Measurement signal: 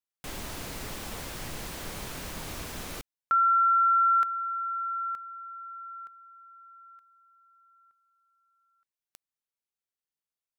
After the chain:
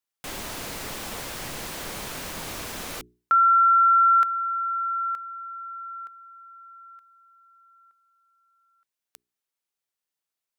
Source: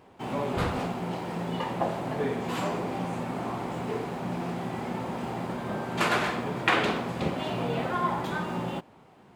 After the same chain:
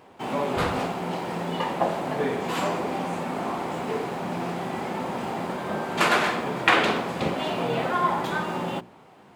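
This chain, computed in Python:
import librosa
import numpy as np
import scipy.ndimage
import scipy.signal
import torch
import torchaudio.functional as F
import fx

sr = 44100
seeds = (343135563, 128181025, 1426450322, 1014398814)

y = fx.low_shelf(x, sr, hz=150.0, db=-8.0)
y = fx.hum_notches(y, sr, base_hz=60, count=7)
y = y * 10.0 ** (5.0 / 20.0)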